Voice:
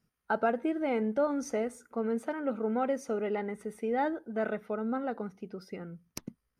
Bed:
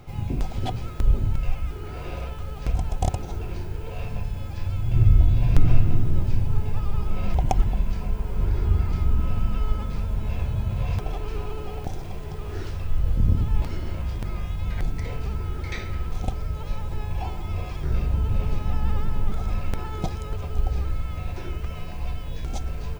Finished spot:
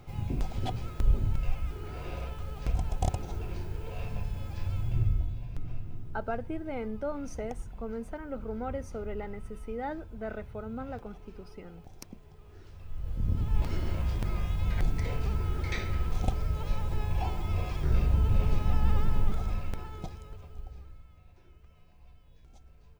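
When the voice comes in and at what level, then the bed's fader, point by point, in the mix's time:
5.85 s, −6.0 dB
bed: 0:04.80 −5 dB
0:05.50 −20 dB
0:12.62 −20 dB
0:13.75 −1.5 dB
0:19.18 −1.5 dB
0:21.21 −26 dB

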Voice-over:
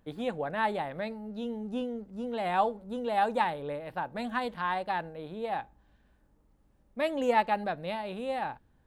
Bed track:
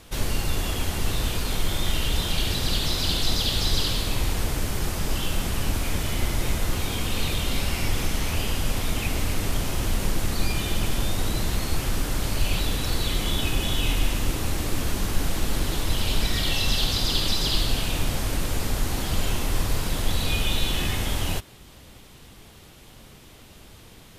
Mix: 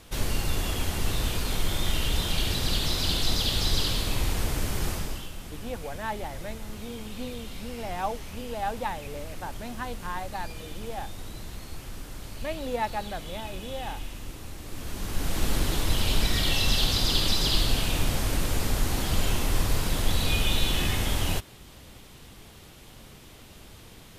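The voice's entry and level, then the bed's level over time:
5.45 s, −4.0 dB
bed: 0:04.92 −2 dB
0:05.32 −14 dB
0:14.61 −14 dB
0:15.44 −0.5 dB

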